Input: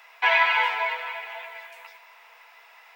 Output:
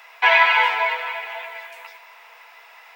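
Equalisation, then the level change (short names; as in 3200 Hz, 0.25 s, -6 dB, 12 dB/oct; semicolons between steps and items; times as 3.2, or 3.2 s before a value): low shelf 330 Hz +3 dB; +5.0 dB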